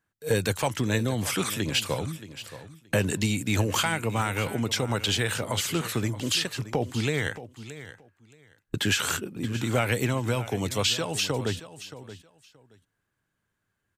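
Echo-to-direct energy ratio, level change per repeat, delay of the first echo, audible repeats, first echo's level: -14.5 dB, -15.0 dB, 625 ms, 2, -14.5 dB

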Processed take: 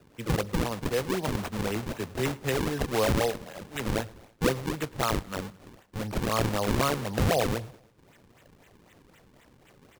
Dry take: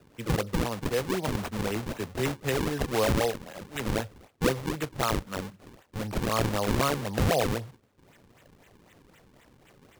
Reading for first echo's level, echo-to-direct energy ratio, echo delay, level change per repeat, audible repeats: -23.0 dB, -21.5 dB, 108 ms, -5.5 dB, 3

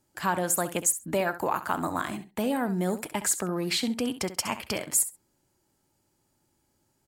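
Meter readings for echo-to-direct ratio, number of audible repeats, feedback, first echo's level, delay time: -13.0 dB, 2, 15%, -13.0 dB, 66 ms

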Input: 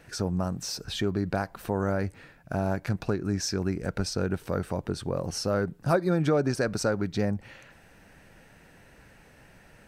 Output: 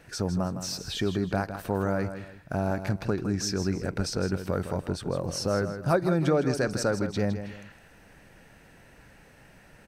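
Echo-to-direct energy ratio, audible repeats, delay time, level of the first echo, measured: -9.5 dB, 2, 160 ms, -10.0 dB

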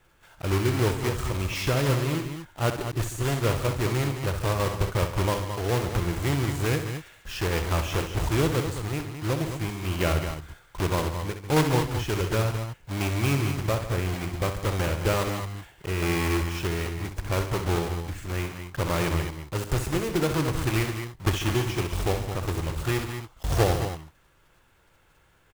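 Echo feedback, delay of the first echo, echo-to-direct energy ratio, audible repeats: no regular repeats, 64 ms, -5.0 dB, 3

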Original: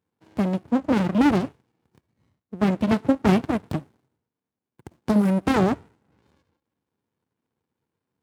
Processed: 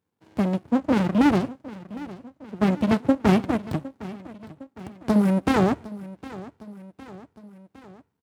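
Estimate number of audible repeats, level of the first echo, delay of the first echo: 3, -17.5 dB, 759 ms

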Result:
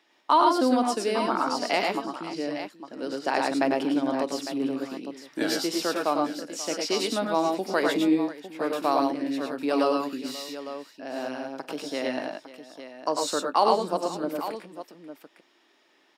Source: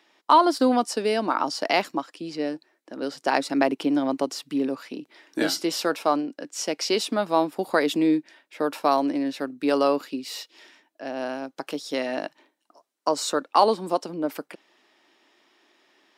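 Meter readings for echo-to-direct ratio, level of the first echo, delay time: -1.0 dB, -18.5 dB, 47 ms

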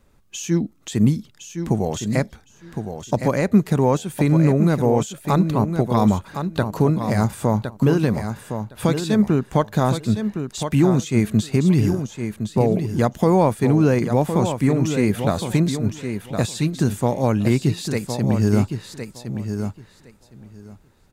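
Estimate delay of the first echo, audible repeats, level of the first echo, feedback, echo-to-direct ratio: 1062 ms, 2, -8.0 dB, 16%, -8.0 dB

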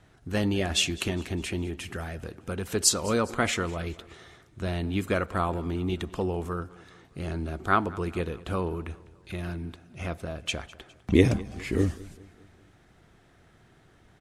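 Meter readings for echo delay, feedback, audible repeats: 204 ms, 51%, 3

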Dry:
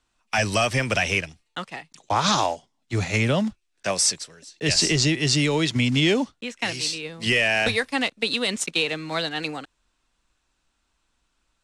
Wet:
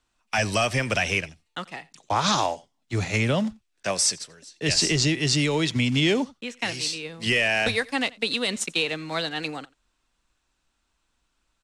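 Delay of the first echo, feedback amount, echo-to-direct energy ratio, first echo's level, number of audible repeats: 87 ms, no regular repeats, -23.5 dB, -23.5 dB, 1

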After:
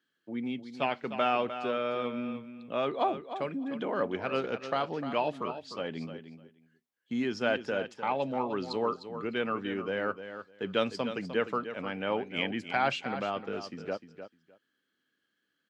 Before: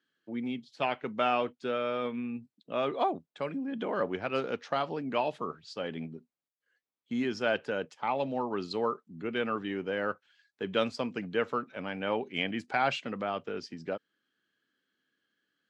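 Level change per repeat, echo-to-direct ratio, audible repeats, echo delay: -16.0 dB, -10.5 dB, 2, 303 ms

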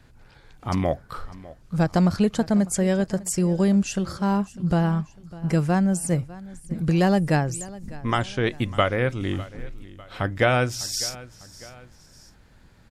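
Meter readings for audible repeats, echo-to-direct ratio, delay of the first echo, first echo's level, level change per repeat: 2, -18.0 dB, 601 ms, -19.0 dB, -6.5 dB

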